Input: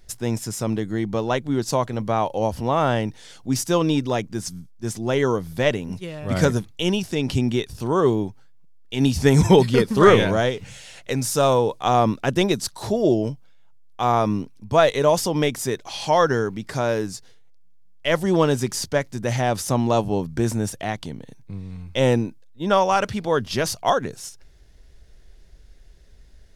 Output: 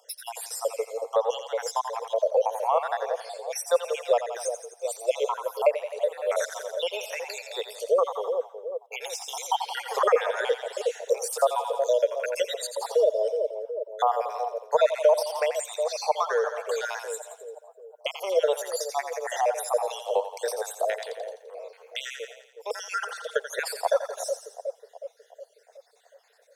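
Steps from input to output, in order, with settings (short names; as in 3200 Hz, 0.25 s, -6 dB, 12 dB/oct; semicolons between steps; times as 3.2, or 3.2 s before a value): random spectral dropouts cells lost 65%; steep high-pass 470 Hz 96 dB/oct; high shelf 3700 Hz +10.5 dB; on a send: split-band echo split 640 Hz, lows 0.367 s, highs 85 ms, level -9.5 dB; on the sum: compressor 2.5:1, threshold -31 dBFS, peak gain reduction 12 dB; tilt shelf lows +10 dB; gain +6 dB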